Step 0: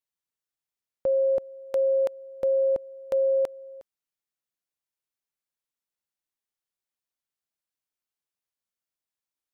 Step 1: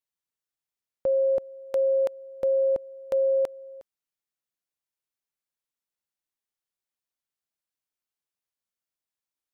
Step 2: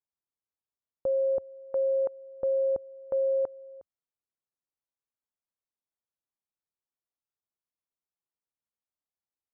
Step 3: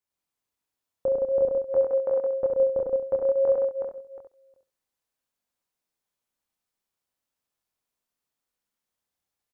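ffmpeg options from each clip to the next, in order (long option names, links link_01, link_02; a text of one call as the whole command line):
ffmpeg -i in.wav -af anull out.wav
ffmpeg -i in.wav -af "lowpass=frequency=1300:width=0.5412,lowpass=frequency=1300:width=1.3066,equalizer=frequency=86:width=2.4:gain=3,volume=-3.5dB" out.wav
ffmpeg -i in.wav -filter_complex "[0:a]asplit=2[link_01][link_02];[link_02]aecho=0:1:68|136|204:0.473|0.071|0.0106[link_03];[link_01][link_03]amix=inputs=2:normalize=0,flanger=delay=22.5:depth=6.4:speed=0.53,asplit=2[link_04][link_05];[link_05]aecho=0:1:99|103|167|369|727:0.141|0.708|0.562|0.631|0.168[link_06];[link_04][link_06]amix=inputs=2:normalize=0,volume=8dB" out.wav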